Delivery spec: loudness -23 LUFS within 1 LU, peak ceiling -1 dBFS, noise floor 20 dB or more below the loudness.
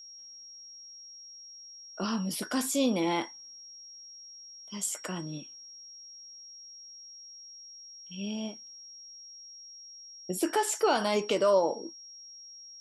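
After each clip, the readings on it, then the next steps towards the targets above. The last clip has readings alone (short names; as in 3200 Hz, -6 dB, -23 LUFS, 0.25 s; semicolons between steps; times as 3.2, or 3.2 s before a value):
steady tone 5600 Hz; tone level -46 dBFS; loudness -30.5 LUFS; peak -14.5 dBFS; loudness target -23.0 LUFS
-> notch 5600 Hz, Q 30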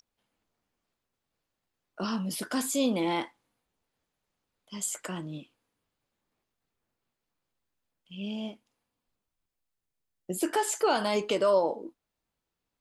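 steady tone none; loudness -29.5 LUFS; peak -14.5 dBFS; loudness target -23.0 LUFS
-> gain +6.5 dB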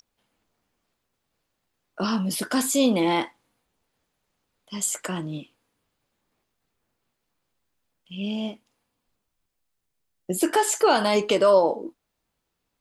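loudness -23.5 LUFS; peak -8.0 dBFS; noise floor -79 dBFS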